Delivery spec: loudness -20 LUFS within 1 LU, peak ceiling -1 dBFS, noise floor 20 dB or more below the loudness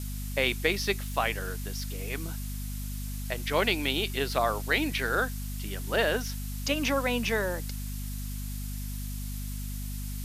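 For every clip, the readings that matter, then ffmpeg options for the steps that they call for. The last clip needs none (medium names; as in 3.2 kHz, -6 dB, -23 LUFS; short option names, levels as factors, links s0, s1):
hum 50 Hz; highest harmonic 250 Hz; hum level -33 dBFS; noise floor -35 dBFS; noise floor target -51 dBFS; loudness -30.5 LUFS; peak level -11.0 dBFS; loudness target -20.0 LUFS
-> -af "bandreject=f=50:t=h:w=4,bandreject=f=100:t=h:w=4,bandreject=f=150:t=h:w=4,bandreject=f=200:t=h:w=4,bandreject=f=250:t=h:w=4"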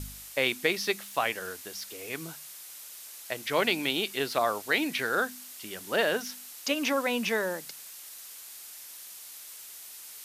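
hum not found; noise floor -46 dBFS; noise floor target -50 dBFS
-> -af "afftdn=nr=6:nf=-46"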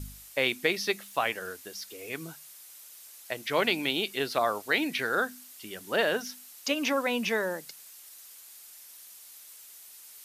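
noise floor -50 dBFS; loudness -29.5 LUFS; peak level -11.0 dBFS; loudness target -20.0 LUFS
-> -af "volume=2.99"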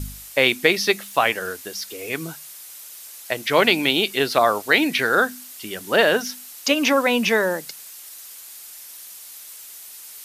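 loudness -20.0 LUFS; peak level -1.5 dBFS; noise floor -41 dBFS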